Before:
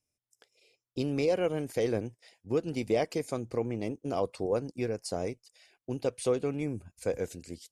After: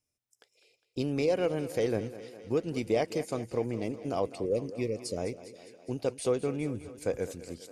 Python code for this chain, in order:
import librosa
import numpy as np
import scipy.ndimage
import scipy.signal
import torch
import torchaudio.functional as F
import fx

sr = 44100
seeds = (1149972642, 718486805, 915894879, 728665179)

p1 = fx.spec_repair(x, sr, seeds[0], start_s=4.36, length_s=0.79, low_hz=610.0, high_hz=1800.0, source='before')
y = p1 + fx.echo_thinned(p1, sr, ms=204, feedback_pct=68, hz=160.0, wet_db=-14.5, dry=0)